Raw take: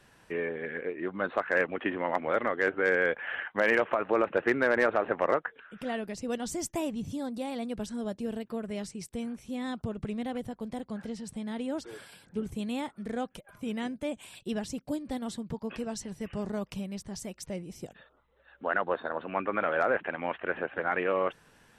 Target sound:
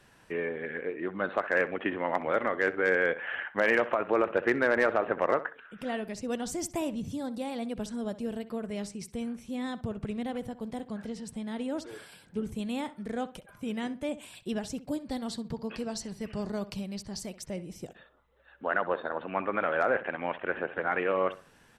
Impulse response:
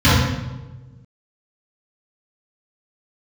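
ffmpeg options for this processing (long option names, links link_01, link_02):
-filter_complex "[0:a]asettb=1/sr,asplit=3[link_01][link_02][link_03];[link_01]atrim=end=15.064[link_04];[link_02]atrim=start=15.06:end=17.37,asetpts=PTS-STARTPTS,afade=type=in:duration=0.004:curve=qsin,afade=type=out:start_time=2.306:duration=0.004:curve=qsin,equalizer=frequency=4500:width_type=o:width=0.27:gain=10.5[link_05];[link_03]atrim=start=17.366[link_06];[link_04][link_05]acrossfade=duration=0.004:curve1=hsin:curve2=qsin[link_07];[link_07][link_06]acrossfade=duration=0.004:curve1=qsin:curve2=hsin,asplit=2[link_08][link_09];[link_09]adelay=64,lowpass=frequency=3100:poles=1,volume=-15dB,asplit=2[link_10][link_11];[link_11]adelay=64,lowpass=frequency=3100:poles=1,volume=0.3,asplit=2[link_12][link_13];[link_13]adelay=64,lowpass=frequency=3100:poles=1,volume=0.3[link_14];[link_08][link_10][link_12][link_14]amix=inputs=4:normalize=0"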